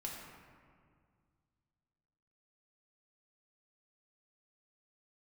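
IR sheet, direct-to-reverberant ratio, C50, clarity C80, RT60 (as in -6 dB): -3.0 dB, 1.0 dB, 2.5 dB, 2.0 s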